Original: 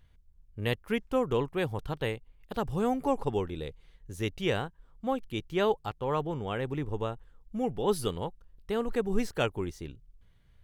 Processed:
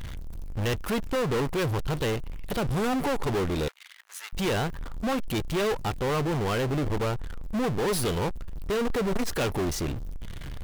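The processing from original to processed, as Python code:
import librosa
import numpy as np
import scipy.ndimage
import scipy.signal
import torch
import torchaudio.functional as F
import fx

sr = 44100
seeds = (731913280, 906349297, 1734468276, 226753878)

y = 10.0 ** (-29.5 / 20.0) * np.tanh(x / 10.0 ** (-29.5 / 20.0))
y = fx.power_curve(y, sr, exponent=0.35)
y = fx.ladder_highpass(y, sr, hz=1100.0, resonance_pct=25, at=(3.68, 4.33))
y = y * 10.0 ** (6.0 / 20.0)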